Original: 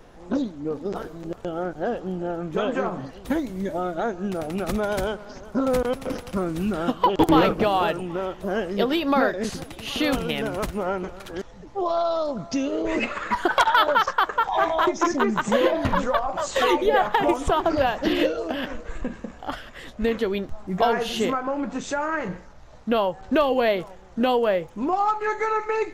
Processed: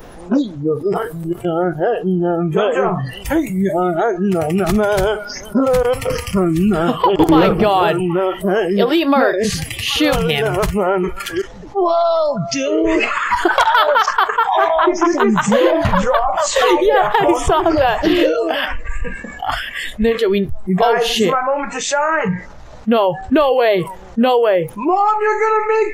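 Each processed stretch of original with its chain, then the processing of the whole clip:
14.68–15.13 LPF 8000 Hz + high shelf 4500 Hz -10 dB
whole clip: spectral noise reduction 19 dB; dynamic EQ 240 Hz, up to +5 dB, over -38 dBFS, Q 0.83; fast leveller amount 50%; gain +2.5 dB

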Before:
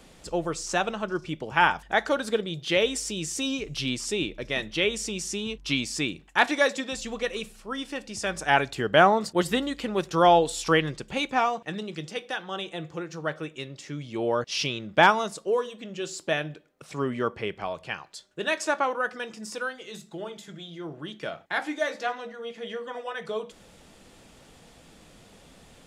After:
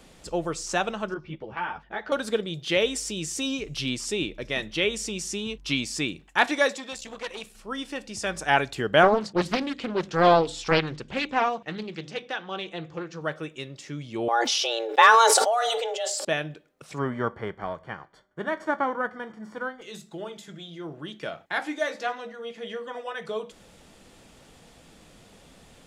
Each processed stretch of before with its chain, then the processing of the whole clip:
1.14–2.12 air absorption 260 m + compressor 3:1, threshold -24 dBFS + ensemble effect
6.74–7.55 low shelf 370 Hz -7 dB + core saturation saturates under 2400 Hz
9.03–13.21 LPF 5600 Hz + notches 50/100/150/200/250/300 Hz + Doppler distortion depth 0.61 ms
14.28–16.25 comb 3.3 ms, depth 50% + frequency shift +230 Hz + sustainer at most 20 dB/s
16.97–19.81 spectral whitening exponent 0.6 + polynomial smoothing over 41 samples
whole clip: dry

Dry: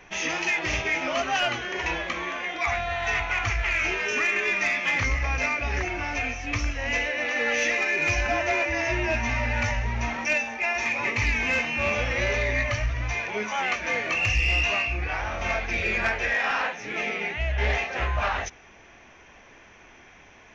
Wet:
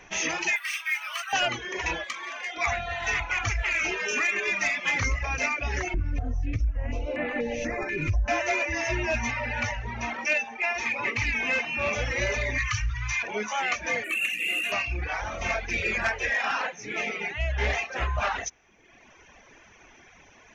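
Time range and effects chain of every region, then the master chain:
0.56–1.33 HPF 1200 Hz 24 dB/oct + decimation joined by straight lines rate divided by 3×
2.04–2.57 HPF 770 Hz 6 dB/oct + core saturation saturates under 2900 Hz
5.94–8.28 tilt -4.5 dB/oct + compressor, threshold -21 dBFS + stepped notch 4.1 Hz 770–5600 Hz
9.31–11.93 LPF 4900 Hz + low shelf 120 Hz -6 dB
12.58–13.23 elliptic band-stop 110–1100 Hz, stop band 50 dB + fast leveller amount 50%
14.04–14.72 CVSD 64 kbps + brick-wall FIR high-pass 180 Hz + fixed phaser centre 2200 Hz, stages 4
whole clip: reverb removal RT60 1.1 s; bell 6600 Hz +5.5 dB 0.6 oct

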